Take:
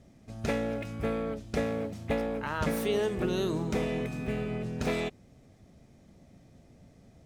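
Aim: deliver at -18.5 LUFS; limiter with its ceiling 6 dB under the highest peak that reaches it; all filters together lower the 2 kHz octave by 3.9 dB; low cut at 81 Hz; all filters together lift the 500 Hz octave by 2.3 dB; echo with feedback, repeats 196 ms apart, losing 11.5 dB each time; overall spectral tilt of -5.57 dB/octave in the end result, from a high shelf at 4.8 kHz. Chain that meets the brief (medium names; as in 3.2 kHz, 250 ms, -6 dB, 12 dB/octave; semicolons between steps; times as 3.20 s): high-pass 81 Hz; peaking EQ 500 Hz +3 dB; peaking EQ 2 kHz -4 dB; treble shelf 4.8 kHz -6.5 dB; peak limiter -22.5 dBFS; feedback delay 196 ms, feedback 27%, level -11.5 dB; trim +13.5 dB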